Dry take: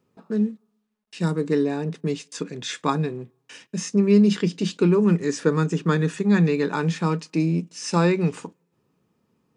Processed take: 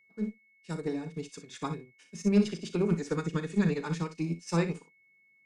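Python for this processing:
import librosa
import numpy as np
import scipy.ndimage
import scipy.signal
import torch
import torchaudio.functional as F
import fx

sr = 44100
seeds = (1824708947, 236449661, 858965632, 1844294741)

y = fx.stretch_vocoder(x, sr, factor=0.57)
y = fx.harmonic_tremolo(y, sr, hz=9.2, depth_pct=50, crossover_hz=450.0)
y = fx.cheby_harmonics(y, sr, harmonics=(2, 4, 6), levels_db=(-14, -23, -28), full_scale_db=-8.5)
y = fx.room_early_taps(y, sr, ms=(36, 60), db=(-11.5, -10.0))
y = y + 10.0 ** (-48.0 / 20.0) * np.sin(2.0 * np.pi * 2200.0 * np.arange(len(y)) / sr)
y = fx.high_shelf(y, sr, hz=4700.0, db=8.0)
y = fx.upward_expand(y, sr, threshold_db=-38.0, expansion=1.5)
y = y * librosa.db_to_amplitude(-4.0)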